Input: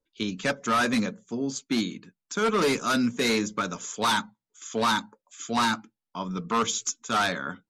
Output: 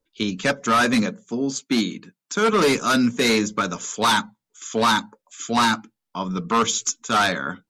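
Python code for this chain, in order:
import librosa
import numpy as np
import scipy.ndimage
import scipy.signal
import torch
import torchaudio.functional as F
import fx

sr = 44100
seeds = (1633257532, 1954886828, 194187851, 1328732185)

y = fx.highpass(x, sr, hz=120.0, slope=12, at=(1.02, 2.53))
y = F.gain(torch.from_numpy(y), 5.5).numpy()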